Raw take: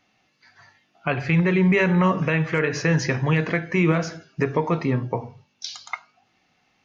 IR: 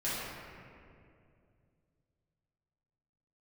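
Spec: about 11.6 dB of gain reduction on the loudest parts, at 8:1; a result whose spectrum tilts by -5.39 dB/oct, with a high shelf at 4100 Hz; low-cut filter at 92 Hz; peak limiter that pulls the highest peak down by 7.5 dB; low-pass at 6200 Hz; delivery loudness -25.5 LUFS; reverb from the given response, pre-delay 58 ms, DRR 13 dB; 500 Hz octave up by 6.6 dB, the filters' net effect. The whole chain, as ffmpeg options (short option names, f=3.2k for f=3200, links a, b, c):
-filter_complex "[0:a]highpass=92,lowpass=6.2k,equalizer=f=500:t=o:g=8,highshelf=f=4.1k:g=6.5,acompressor=threshold=-24dB:ratio=8,alimiter=limit=-19dB:level=0:latency=1,asplit=2[a][b];[1:a]atrim=start_sample=2205,adelay=58[c];[b][c]afir=irnorm=-1:irlink=0,volume=-20dB[d];[a][d]amix=inputs=2:normalize=0,volume=5dB"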